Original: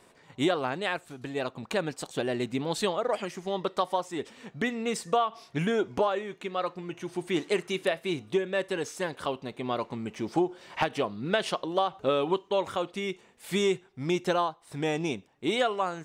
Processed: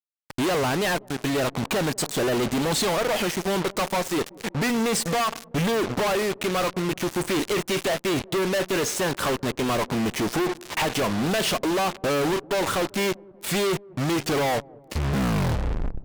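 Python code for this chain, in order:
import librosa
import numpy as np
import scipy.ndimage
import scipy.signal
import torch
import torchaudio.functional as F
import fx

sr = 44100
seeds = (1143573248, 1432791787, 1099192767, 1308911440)

y = fx.tape_stop_end(x, sr, length_s=2.03)
y = fx.fuzz(y, sr, gain_db=53.0, gate_db=-43.0)
y = fx.echo_wet_lowpass(y, sr, ms=191, feedback_pct=59, hz=660.0, wet_db=-22)
y = y * 10.0 ** (-8.5 / 20.0)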